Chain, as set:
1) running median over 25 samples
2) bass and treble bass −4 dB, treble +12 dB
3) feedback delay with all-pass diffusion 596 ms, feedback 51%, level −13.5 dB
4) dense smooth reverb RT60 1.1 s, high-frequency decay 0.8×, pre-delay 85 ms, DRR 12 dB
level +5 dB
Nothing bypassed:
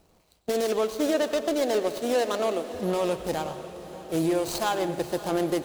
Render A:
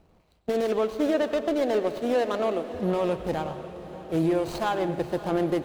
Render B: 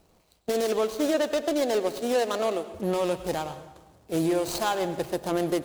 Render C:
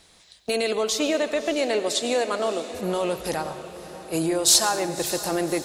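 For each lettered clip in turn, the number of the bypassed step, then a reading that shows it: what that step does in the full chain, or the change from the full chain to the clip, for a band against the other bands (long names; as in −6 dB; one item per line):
2, 4 kHz band −5.0 dB
3, echo-to-direct ratio −9.0 dB to −12.0 dB
1, 8 kHz band +13.0 dB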